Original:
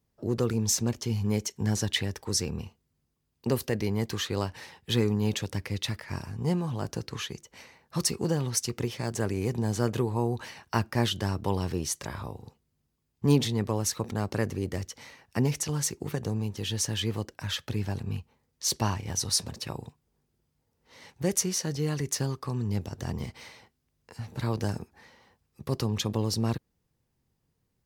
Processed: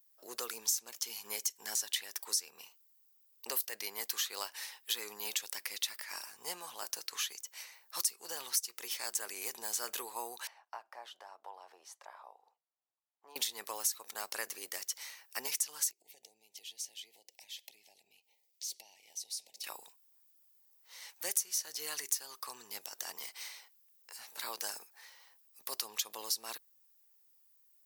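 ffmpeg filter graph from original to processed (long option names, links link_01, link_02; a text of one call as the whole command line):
ffmpeg -i in.wav -filter_complex "[0:a]asettb=1/sr,asplit=3[link_01][link_02][link_03];[link_01]atrim=end=10.474[link_04];[link_02]atrim=start=10.47:end=13.36,asetpts=PTS-STARTPTS,afade=type=in:duration=0.004:curve=qsin,afade=type=out:start_time=2.886:duration=0.004:curve=qsin,acompressor=threshold=-27dB:ratio=2.5:attack=3.2:release=140:knee=1:detection=peak,bandpass=frequency=740:width_type=q:width=2.3[link_05];[link_03]atrim=start=13.356[link_06];[link_04][link_05]acrossfade=duration=0.004:curve1=hsin:curve2=qsin[link_07];[link_07][link_06]acrossfade=duration=0.004:curve1=qsin:curve2=hsin,asettb=1/sr,asplit=3[link_08][link_09][link_10];[link_08]atrim=end=15.914[link_11];[link_09]atrim=start=15.91:end=19.64,asetpts=PTS-STARTPTS,afade=type=in:duration=0.004:curve=qsin,afade=type=out:start_time=3.726:duration=0.004:curve=qsin,highshelf=frequency=8000:gain=-10,acompressor=threshold=-46dB:ratio=4:attack=3.2:release=140:knee=1:detection=peak,asuperstop=centerf=1300:order=8:qfactor=1.1[link_12];[link_10]atrim=start=19.636[link_13];[link_11][link_12]acrossfade=duration=0.004:curve1=hsin:curve2=qsin[link_14];[link_14][link_13]acrossfade=duration=0.004:curve1=qsin:curve2=hsin,highpass=760,aemphasis=mode=production:type=riaa,acompressor=threshold=-28dB:ratio=4,volume=-4dB" out.wav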